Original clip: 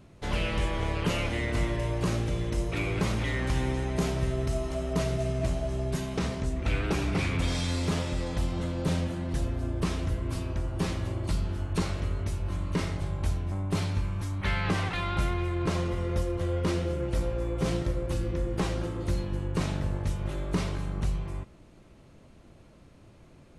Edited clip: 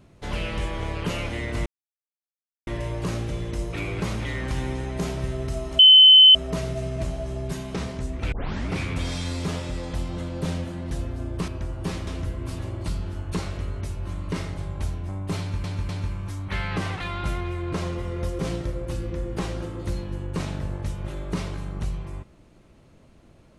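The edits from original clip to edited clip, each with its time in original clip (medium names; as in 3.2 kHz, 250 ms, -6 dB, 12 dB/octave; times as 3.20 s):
1.66 s: insert silence 1.01 s
4.78 s: add tone 3.05 kHz -7.5 dBFS 0.56 s
6.75 s: tape start 0.37 s
9.91–10.43 s: move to 11.02 s
13.82–14.07 s: loop, 3 plays
16.32–17.60 s: delete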